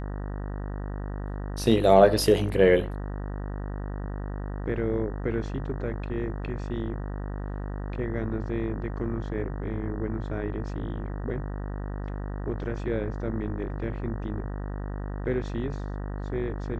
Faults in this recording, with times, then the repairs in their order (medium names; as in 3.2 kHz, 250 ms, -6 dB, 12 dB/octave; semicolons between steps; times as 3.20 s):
buzz 50 Hz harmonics 38 -33 dBFS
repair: de-hum 50 Hz, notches 38